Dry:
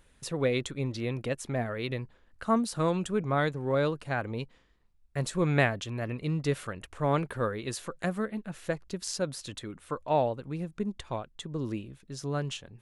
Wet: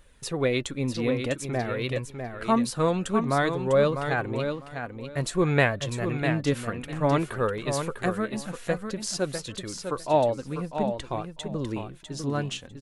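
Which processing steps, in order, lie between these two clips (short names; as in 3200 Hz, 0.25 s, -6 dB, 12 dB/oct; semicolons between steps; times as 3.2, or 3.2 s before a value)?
feedback echo 0.65 s, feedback 17%, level -7 dB; flange 0.52 Hz, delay 1.6 ms, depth 2.7 ms, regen +61%; gain +8 dB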